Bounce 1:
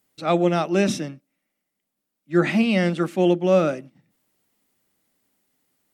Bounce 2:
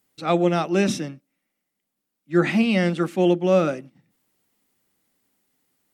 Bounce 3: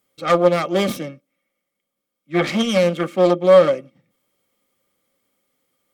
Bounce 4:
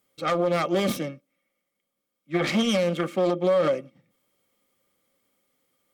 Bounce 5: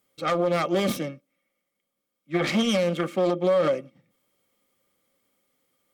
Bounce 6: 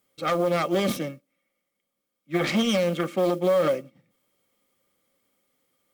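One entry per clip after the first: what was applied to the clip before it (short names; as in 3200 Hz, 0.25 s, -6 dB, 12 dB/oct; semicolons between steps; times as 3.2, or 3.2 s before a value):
notch 620 Hz, Q 12
self-modulated delay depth 0.46 ms; small resonant body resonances 540/1200/2200/3200 Hz, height 14 dB, ringing for 45 ms; gain -1 dB
limiter -13 dBFS, peak gain reduction 11 dB; gain -1.5 dB
nothing audible
modulation noise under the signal 28 dB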